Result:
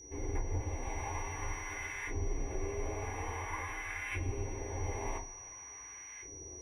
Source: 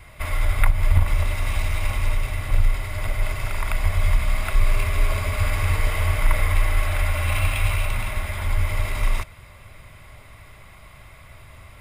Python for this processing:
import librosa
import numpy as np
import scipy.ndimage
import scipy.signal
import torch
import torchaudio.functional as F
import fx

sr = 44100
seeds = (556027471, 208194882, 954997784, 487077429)

y = fx.graphic_eq_15(x, sr, hz=(250, 1000, 4000), db=(4, -10, 5))
y = fx.filter_lfo_bandpass(y, sr, shape='saw_up', hz=0.27, low_hz=340.0, high_hz=1800.0, q=1.9)
y = fx.peak_eq(y, sr, hz=2500.0, db=-9.0, octaves=1.1)
y = fx.fixed_phaser(y, sr, hz=890.0, stages=8)
y = fx.room_shoebox(y, sr, seeds[0], volume_m3=780.0, walls='furnished', distance_m=4.2)
y = y + 10.0 ** (-52.0 / 20.0) * np.sin(2.0 * np.pi * 5800.0 * np.arange(len(y)) / sr)
y = fx.stretch_vocoder(y, sr, factor=0.56)
y = fx.rider(y, sr, range_db=3, speed_s=0.5)
y = y * 10.0 ** (2.0 / 20.0)